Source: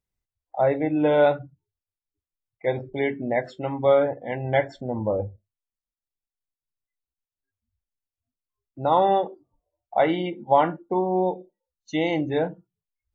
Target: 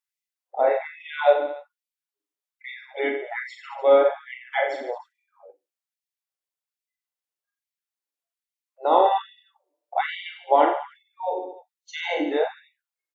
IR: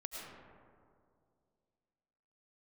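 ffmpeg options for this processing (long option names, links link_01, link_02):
-filter_complex "[0:a]aecho=1:1:40|88|145.6|214.7|297.7:0.631|0.398|0.251|0.158|0.1,asplit=2[link_01][link_02];[link_02]asetrate=33038,aresample=44100,atempo=1.33484,volume=-14dB[link_03];[link_01][link_03]amix=inputs=2:normalize=0,afftfilt=real='re*gte(b*sr/1024,250*pow(1900/250,0.5+0.5*sin(2*PI*1.2*pts/sr)))':imag='im*gte(b*sr/1024,250*pow(1900/250,0.5+0.5*sin(2*PI*1.2*pts/sr)))':win_size=1024:overlap=0.75"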